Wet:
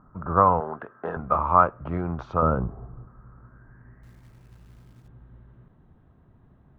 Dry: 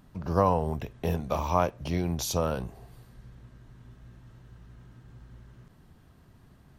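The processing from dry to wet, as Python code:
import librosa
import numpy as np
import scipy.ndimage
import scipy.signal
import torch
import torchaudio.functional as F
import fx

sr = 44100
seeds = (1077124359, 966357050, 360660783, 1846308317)

y = fx.wiener(x, sr, points=9)
y = fx.env_lowpass(y, sr, base_hz=1200.0, full_db=-22.5)
y = fx.tilt_shelf(y, sr, db=9.0, hz=800.0, at=(2.42, 3.08))
y = fx.filter_sweep_lowpass(y, sr, from_hz=1300.0, to_hz=3900.0, start_s=3.37, end_s=5.14, q=7.9)
y = fx.cabinet(y, sr, low_hz=290.0, low_slope=12, high_hz=7400.0, hz=(1600.0, 2300.0, 3500.0), db=(9, -6, 5), at=(0.6, 1.17))
y = fx.quant_float(y, sr, bits=2, at=(4.03, 5.08))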